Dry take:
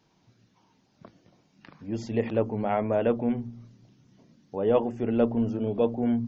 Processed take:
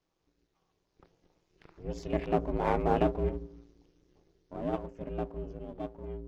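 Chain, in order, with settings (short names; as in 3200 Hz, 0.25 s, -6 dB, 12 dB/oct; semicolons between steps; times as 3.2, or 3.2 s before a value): half-wave gain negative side -7 dB; Doppler pass-by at 2.79, 7 m/s, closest 5 m; ring modulator 170 Hz; gain +3.5 dB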